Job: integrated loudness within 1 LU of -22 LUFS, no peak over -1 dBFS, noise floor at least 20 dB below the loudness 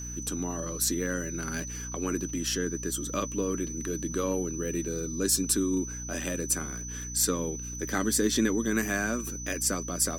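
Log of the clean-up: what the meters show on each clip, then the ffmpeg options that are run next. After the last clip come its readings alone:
hum 60 Hz; harmonics up to 300 Hz; hum level -37 dBFS; steady tone 6000 Hz; tone level -38 dBFS; loudness -29.5 LUFS; peak -11.0 dBFS; loudness target -22.0 LUFS
-> -af "bandreject=f=60:t=h:w=6,bandreject=f=120:t=h:w=6,bandreject=f=180:t=h:w=6,bandreject=f=240:t=h:w=6,bandreject=f=300:t=h:w=6"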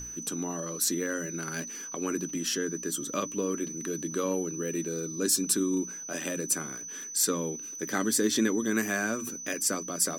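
hum none; steady tone 6000 Hz; tone level -38 dBFS
-> -af "bandreject=f=6k:w=30"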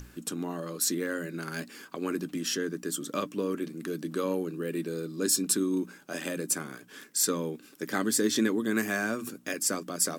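steady tone none; loudness -30.5 LUFS; peak -11.0 dBFS; loudness target -22.0 LUFS
-> -af "volume=8.5dB"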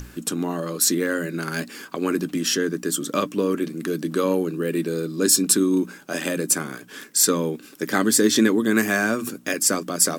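loudness -22.0 LUFS; peak -2.5 dBFS; noise floor -46 dBFS

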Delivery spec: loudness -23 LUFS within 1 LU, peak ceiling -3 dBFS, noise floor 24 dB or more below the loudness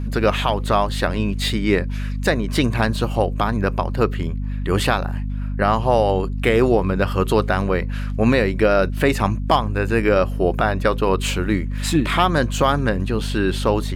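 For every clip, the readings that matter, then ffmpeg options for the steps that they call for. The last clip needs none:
hum 50 Hz; harmonics up to 250 Hz; hum level -22 dBFS; loudness -20.0 LUFS; peak -4.0 dBFS; loudness target -23.0 LUFS
-> -af "bandreject=f=50:t=h:w=6,bandreject=f=100:t=h:w=6,bandreject=f=150:t=h:w=6,bandreject=f=200:t=h:w=6,bandreject=f=250:t=h:w=6"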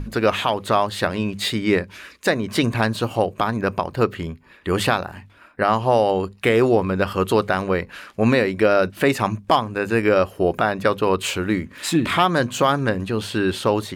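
hum none; loudness -20.5 LUFS; peak -4.5 dBFS; loudness target -23.0 LUFS
-> -af "volume=-2.5dB"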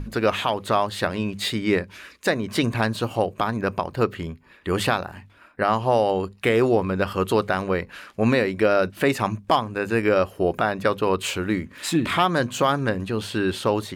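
loudness -23.0 LUFS; peak -7.0 dBFS; noise floor -51 dBFS

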